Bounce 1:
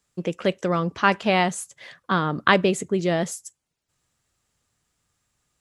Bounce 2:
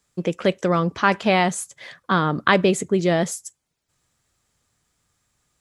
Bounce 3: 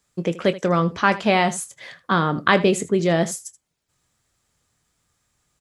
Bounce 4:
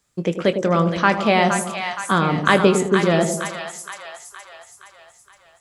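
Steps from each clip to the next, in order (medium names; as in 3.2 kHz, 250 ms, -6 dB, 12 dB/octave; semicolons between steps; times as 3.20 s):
band-stop 2.8 kHz, Q 22; in parallel at -1.5 dB: peak limiter -11.5 dBFS, peak gain reduction 10 dB; on the sum: trim -2 dB
early reflections 24 ms -13 dB, 79 ms -17 dB
two-band feedback delay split 760 Hz, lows 105 ms, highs 468 ms, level -6.5 dB; hard clipper -2 dBFS, distortion -46 dB; trim +1 dB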